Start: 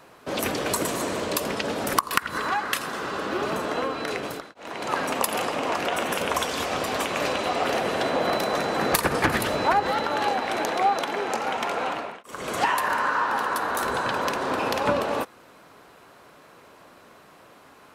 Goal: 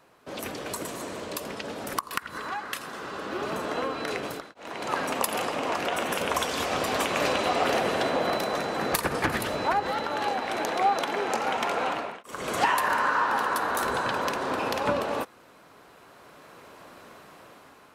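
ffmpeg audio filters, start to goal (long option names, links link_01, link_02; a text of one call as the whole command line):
ffmpeg -i in.wav -af "dynaudnorm=framelen=460:gausssize=5:maxgain=11.5dB,volume=-8.5dB" out.wav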